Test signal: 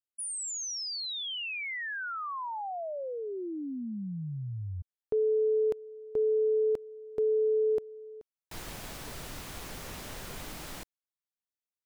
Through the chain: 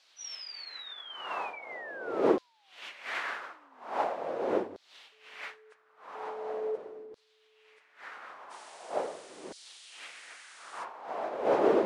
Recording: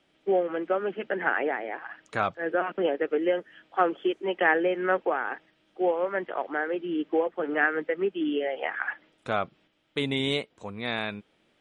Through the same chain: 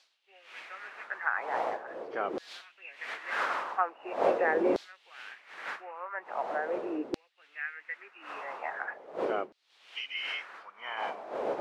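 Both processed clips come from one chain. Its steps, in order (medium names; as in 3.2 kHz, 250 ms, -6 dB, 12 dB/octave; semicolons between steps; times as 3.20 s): knee-point frequency compression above 2.1 kHz 1.5:1; wind noise 500 Hz -25 dBFS; LFO high-pass saw down 0.42 Hz 330–4500 Hz; trim -8.5 dB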